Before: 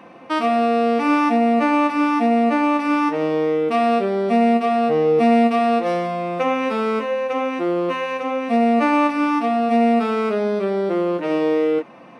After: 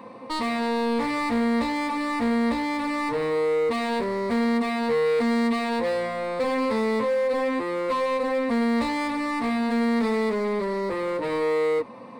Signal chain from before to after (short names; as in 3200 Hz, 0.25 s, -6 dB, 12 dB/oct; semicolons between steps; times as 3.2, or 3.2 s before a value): bell 2100 Hz -7 dB 0.73 oct; overloaded stage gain 25 dB; ripple EQ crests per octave 0.96, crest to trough 10 dB